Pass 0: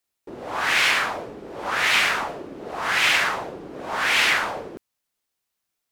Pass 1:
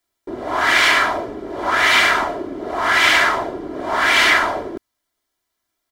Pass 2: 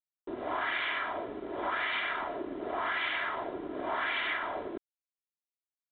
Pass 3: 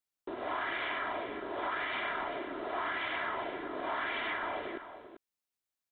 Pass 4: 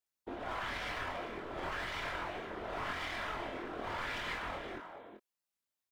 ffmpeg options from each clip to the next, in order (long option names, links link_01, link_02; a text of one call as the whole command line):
ffmpeg -i in.wav -af "highshelf=frequency=3600:gain=-6.5,bandreject=frequency=2600:width=7.2,aecho=1:1:3:0.56,volume=7dB" out.wav
ffmpeg -i in.wav -af "lowshelf=frequency=170:gain=-7,acompressor=threshold=-22dB:ratio=6,aresample=8000,aeval=exprs='sgn(val(0))*max(abs(val(0))-0.00422,0)':channel_layout=same,aresample=44100,volume=-7.5dB" out.wav
ffmpeg -i in.wav -filter_complex "[0:a]acrossover=split=580|1200[link_01][link_02][link_03];[link_01]acompressor=threshold=-47dB:ratio=4[link_04];[link_02]acompressor=threshold=-45dB:ratio=4[link_05];[link_03]acompressor=threshold=-42dB:ratio=4[link_06];[link_04][link_05][link_06]amix=inputs=3:normalize=0,asplit=2[link_07][link_08];[link_08]aecho=0:1:391:0.282[link_09];[link_07][link_09]amix=inputs=2:normalize=0,volume=4dB" out.wav
ffmpeg -i in.wav -filter_complex "[0:a]aeval=exprs='clip(val(0),-1,0.00631)':channel_layout=same,afftfilt=real='hypot(re,im)*cos(2*PI*random(0))':imag='hypot(re,im)*sin(2*PI*random(1))':win_size=512:overlap=0.75,asplit=2[link_01][link_02];[link_02]adelay=23,volume=-4dB[link_03];[link_01][link_03]amix=inputs=2:normalize=0,volume=3.5dB" out.wav